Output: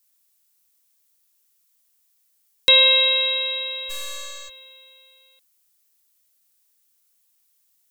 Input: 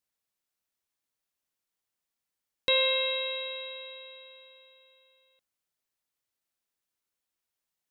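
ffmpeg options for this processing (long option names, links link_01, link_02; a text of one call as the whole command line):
ffmpeg -i in.wav -filter_complex "[0:a]crystalizer=i=4.5:c=0,asplit=3[link_01][link_02][link_03];[link_01]afade=type=out:start_time=3.89:duration=0.02[link_04];[link_02]aeval=exprs='0.0376*(cos(1*acos(clip(val(0)/0.0376,-1,1)))-cos(1*PI/2))+0.00841*(cos(4*acos(clip(val(0)/0.0376,-1,1)))-cos(4*PI/2))+0.0075*(cos(8*acos(clip(val(0)/0.0376,-1,1)))-cos(8*PI/2))':channel_layout=same,afade=type=in:start_time=3.89:duration=0.02,afade=type=out:start_time=4.48:duration=0.02[link_05];[link_03]afade=type=in:start_time=4.48:duration=0.02[link_06];[link_04][link_05][link_06]amix=inputs=3:normalize=0,volume=4dB" out.wav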